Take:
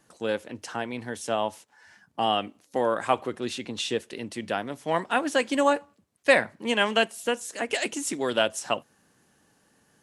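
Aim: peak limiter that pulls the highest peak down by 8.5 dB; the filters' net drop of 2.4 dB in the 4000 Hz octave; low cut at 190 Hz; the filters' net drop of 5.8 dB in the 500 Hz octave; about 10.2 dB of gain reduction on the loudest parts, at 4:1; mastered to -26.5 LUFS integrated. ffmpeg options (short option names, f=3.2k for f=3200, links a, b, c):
-af "highpass=190,equalizer=f=500:t=o:g=-7,equalizer=f=4k:t=o:g=-3.5,acompressor=threshold=-30dB:ratio=4,volume=11dB,alimiter=limit=-13dB:level=0:latency=1"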